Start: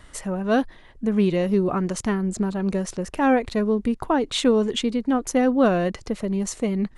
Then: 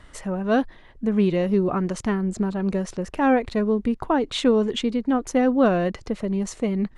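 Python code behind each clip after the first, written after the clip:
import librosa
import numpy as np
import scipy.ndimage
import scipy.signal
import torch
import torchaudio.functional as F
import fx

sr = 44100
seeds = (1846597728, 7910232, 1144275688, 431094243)

y = fx.high_shelf(x, sr, hz=6900.0, db=-10.5)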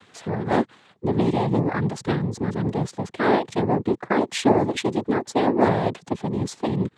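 y = fx.noise_vocoder(x, sr, seeds[0], bands=6)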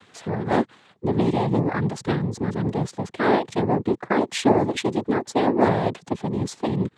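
y = x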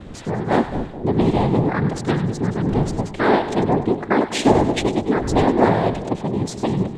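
y = fx.dmg_wind(x, sr, seeds[1], corner_hz=270.0, level_db=-34.0)
y = fx.echo_split(y, sr, split_hz=750.0, low_ms=213, high_ms=99, feedback_pct=52, wet_db=-11.0)
y = y * librosa.db_to_amplitude(3.0)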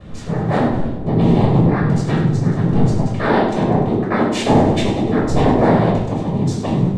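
y = fx.room_shoebox(x, sr, seeds[2], volume_m3=1000.0, walls='furnished', distance_m=5.9)
y = y * librosa.db_to_amplitude(-6.0)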